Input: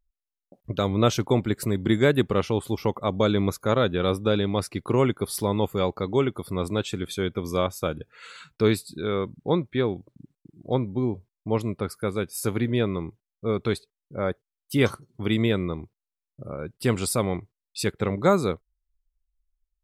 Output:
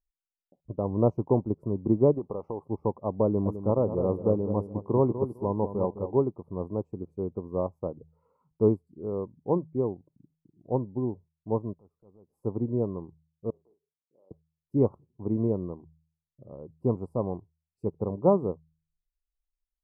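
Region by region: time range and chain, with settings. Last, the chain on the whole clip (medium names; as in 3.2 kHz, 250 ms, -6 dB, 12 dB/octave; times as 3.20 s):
2.14–2.64 s: overdrive pedal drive 13 dB, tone 3.2 kHz, clips at -7.5 dBFS + compression, threshold -22 dBFS
3.25–6.21 s: treble shelf 4.8 kHz +11 dB + filtered feedback delay 207 ms, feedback 32%, low-pass 1.5 kHz, level -7 dB
11.73–12.30 s: compression 2.5:1, threshold -47 dBFS + transient shaper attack -8 dB, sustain -4 dB
13.50–14.31 s: compression 16:1, threshold -37 dBFS + ladder band-pass 570 Hz, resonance 20% + doubling 42 ms -8 dB
whole clip: elliptic low-pass 1 kHz, stop band 40 dB; de-hum 79.44 Hz, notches 2; upward expansion 1.5:1, over -37 dBFS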